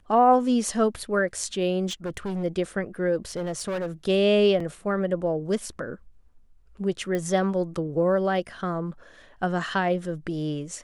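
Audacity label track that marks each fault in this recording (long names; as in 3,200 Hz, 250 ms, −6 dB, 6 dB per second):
1.890000	2.440000	clipping −26.5 dBFS
3.320000	3.910000	clipping −25.5 dBFS
4.600000	4.600000	drop-out 3.6 ms
7.150000	7.150000	click −16 dBFS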